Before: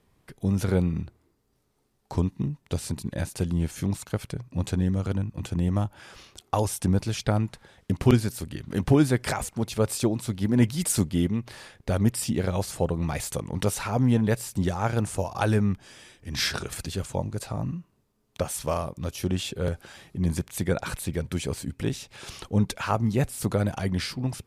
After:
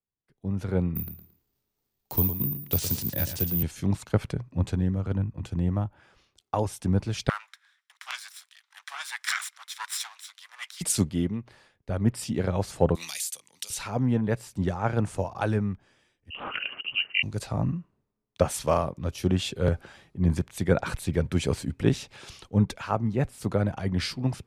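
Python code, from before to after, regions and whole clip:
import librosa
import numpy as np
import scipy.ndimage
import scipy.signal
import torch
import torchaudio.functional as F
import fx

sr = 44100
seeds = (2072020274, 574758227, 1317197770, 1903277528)

y = fx.chain(x, sr, fx.resample_bad(factor=3, down='none', up='zero_stuff'),
    fx.echo_feedback(ms=111, feedback_pct=29, wet_db=-8.5),
    fx.band_squash(depth_pct=40), at=(0.95, 3.63))
y = fx.chain(y, sr, fx.lower_of_two(delay_ms=0.54),
    fx.steep_highpass(hz=1000.0, slope=36), at=(7.29, 10.81))
y = fx.chain(y, sr, fx.differentiator(),
    fx.band_squash(depth_pct=100), at=(12.95, 13.7))
y = fx.chain(y, sr, fx.freq_invert(carrier_hz=2900),
    fx.doppler_dist(depth_ms=0.22), at=(16.3, 17.23))
y = fx.high_shelf(y, sr, hz=9300.0, db=-11.5)
y = fx.rider(y, sr, range_db=4, speed_s=0.5)
y = fx.band_widen(y, sr, depth_pct=70)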